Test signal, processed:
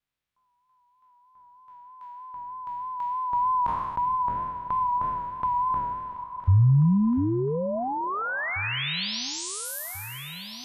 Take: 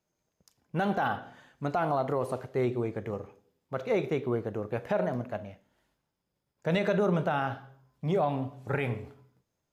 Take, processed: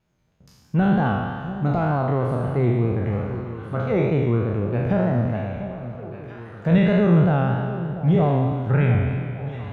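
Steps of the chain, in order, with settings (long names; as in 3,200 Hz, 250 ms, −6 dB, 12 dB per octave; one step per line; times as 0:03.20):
peak hold with a decay on every bin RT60 1.54 s
parametric band 3,700 Hz +2 dB
pitch vibrato 3.2 Hz 44 cents
bass and treble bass +15 dB, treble −14 dB
on a send: delay that swaps between a low-pass and a high-pass 694 ms, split 930 Hz, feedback 69%, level −13 dB
on the sum: one half of a high-frequency compander encoder only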